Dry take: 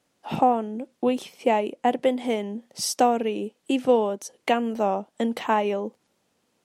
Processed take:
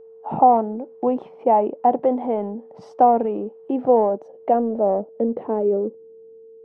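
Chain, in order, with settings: low-pass sweep 860 Hz -> 400 Hz, 3.65–5.95; transient shaper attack -1 dB, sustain +4 dB; whine 450 Hz -42 dBFS

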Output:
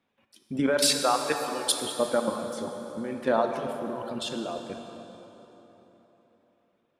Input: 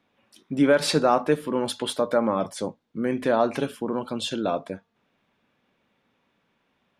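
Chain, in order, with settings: 0.78–1.79 tilt +4 dB/oct; level quantiser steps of 11 dB; reverb removal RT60 1.9 s; plate-style reverb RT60 3.9 s, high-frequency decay 0.7×, DRR 4 dB

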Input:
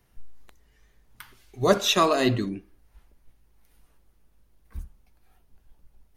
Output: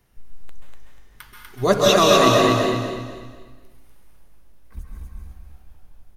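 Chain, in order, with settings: 2.37–4.77 compressor, threshold -42 dBFS, peak gain reduction 16.5 dB; feedback echo 0.244 s, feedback 35%, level -3 dB; plate-style reverb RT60 1.1 s, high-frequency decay 0.75×, pre-delay 0.12 s, DRR -0.5 dB; gain +2 dB

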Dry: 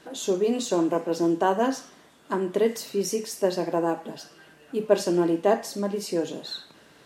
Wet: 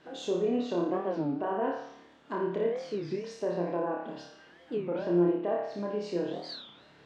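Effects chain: LPF 3900 Hz 12 dB/oct; treble ducked by the level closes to 2100 Hz, closed at -21 dBFS; limiter -17 dBFS, peak gain reduction 10.5 dB; on a send: flutter echo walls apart 4.9 m, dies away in 0.6 s; on the sum: record warp 33 1/3 rpm, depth 250 cents; gain -6 dB

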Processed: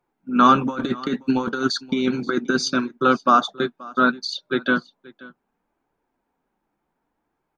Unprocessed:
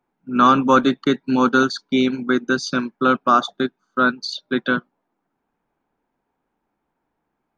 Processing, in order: 0.61–2.68 negative-ratio compressor -19 dBFS, ratio -0.5; flange 0.67 Hz, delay 1.8 ms, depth 4.6 ms, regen -50%; echo 0.529 s -22 dB; gain +3.5 dB

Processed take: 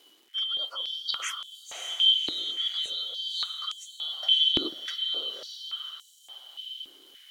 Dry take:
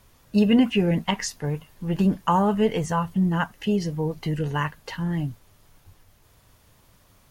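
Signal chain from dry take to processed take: four-band scrambler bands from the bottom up 2413; reverse; compressor, threshold -29 dBFS, peak gain reduction 14.5 dB; reverse; crackle 430/s -48 dBFS; on a send: diffused feedback echo 0.572 s, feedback 40%, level -4 dB; on the sum: stepped high-pass 3.5 Hz 320–7300 Hz; gain -3 dB

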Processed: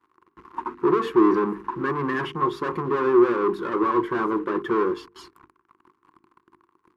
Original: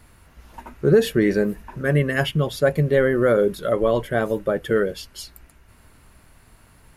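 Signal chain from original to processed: sample leveller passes 5; double band-pass 610 Hz, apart 1.6 oct; notches 50/100/150/200/250/300/350/400/450 Hz

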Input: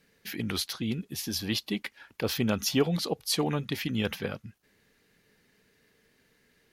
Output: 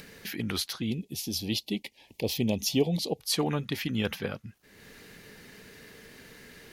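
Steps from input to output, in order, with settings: upward compressor, threshold -35 dBFS; 0.9–3.2 Butterworth band-stop 1400 Hz, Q 0.89

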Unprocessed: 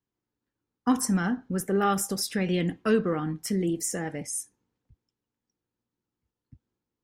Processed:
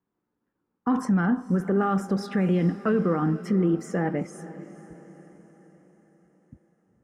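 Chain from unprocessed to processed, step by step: EQ curve 120 Hz 0 dB, 180 Hz +10 dB, 260 Hz +7 dB, 1300 Hz +8 dB, 12000 Hz -23 dB; limiter -15.5 dBFS, peak gain reduction 10.5 dB; diffused feedback echo 0.464 s, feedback 52%, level -16 dB

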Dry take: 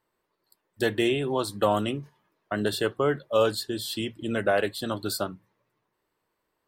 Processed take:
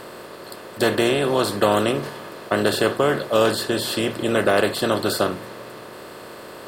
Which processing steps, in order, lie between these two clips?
per-bin compression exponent 0.4; gain +1.5 dB

